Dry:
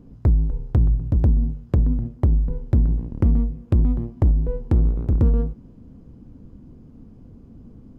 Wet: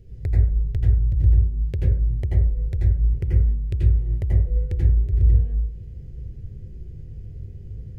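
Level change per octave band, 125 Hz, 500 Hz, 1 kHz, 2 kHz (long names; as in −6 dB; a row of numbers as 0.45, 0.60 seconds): +0.5 dB, −7.0 dB, below −10 dB, can't be measured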